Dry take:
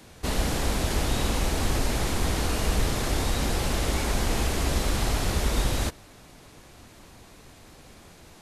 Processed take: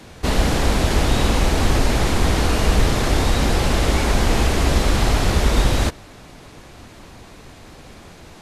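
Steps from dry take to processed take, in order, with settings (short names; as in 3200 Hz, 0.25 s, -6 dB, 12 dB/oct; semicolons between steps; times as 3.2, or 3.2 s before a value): high shelf 7600 Hz -9.5 dB; gain +8.5 dB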